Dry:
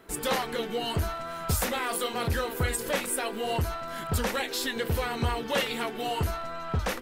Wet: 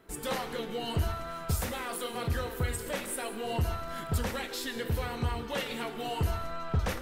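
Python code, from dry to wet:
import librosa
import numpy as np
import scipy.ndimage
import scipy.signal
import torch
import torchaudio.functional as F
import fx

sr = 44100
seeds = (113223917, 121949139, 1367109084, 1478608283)

y = fx.rider(x, sr, range_db=10, speed_s=0.5)
y = fx.low_shelf(y, sr, hz=240.0, db=5.0)
y = fx.rev_gated(y, sr, seeds[0], gate_ms=220, shape='flat', drr_db=9.5)
y = y * librosa.db_to_amplitude(-6.0)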